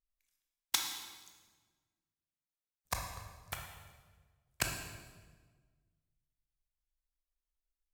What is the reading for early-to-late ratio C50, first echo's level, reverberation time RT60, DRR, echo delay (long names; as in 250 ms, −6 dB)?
4.0 dB, no echo audible, 1.4 s, 2.0 dB, no echo audible